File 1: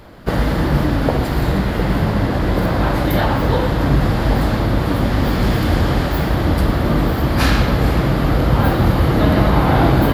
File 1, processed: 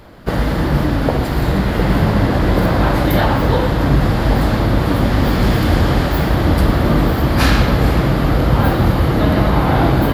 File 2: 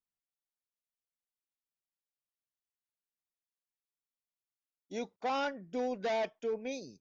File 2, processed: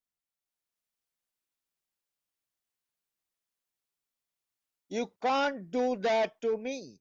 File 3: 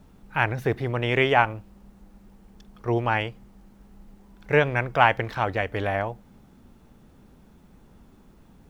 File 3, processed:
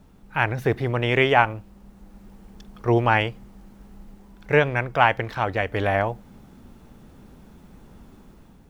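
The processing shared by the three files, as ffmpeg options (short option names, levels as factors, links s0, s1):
-af "dynaudnorm=f=220:g=5:m=1.88"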